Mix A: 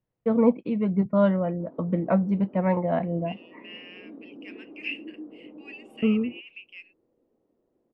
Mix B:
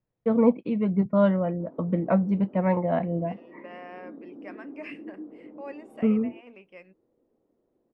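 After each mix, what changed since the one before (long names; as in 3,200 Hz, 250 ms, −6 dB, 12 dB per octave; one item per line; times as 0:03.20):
second voice: remove high-pass with resonance 2,800 Hz, resonance Q 6.3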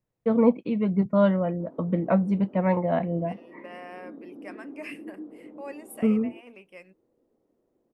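master: remove high-frequency loss of the air 150 metres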